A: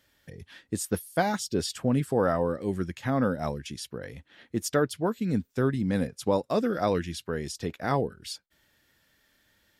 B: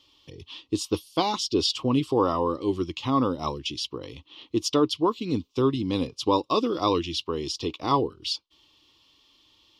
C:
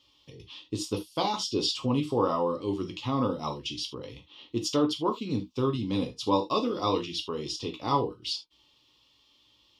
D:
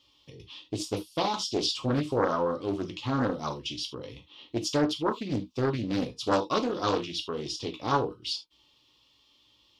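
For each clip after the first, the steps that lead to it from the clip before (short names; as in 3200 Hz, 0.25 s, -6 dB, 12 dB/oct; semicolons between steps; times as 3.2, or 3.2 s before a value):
EQ curve 120 Hz 0 dB, 200 Hz -7 dB, 310 Hz +9 dB, 660 Hz -5 dB, 1100 Hz +13 dB, 1600 Hz -18 dB, 2900 Hz +14 dB, 5400 Hz +8 dB, 8000 Hz -6 dB, 13000 Hz -11 dB
non-linear reverb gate 0.1 s falling, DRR 3 dB; gain -5 dB
Doppler distortion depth 0.53 ms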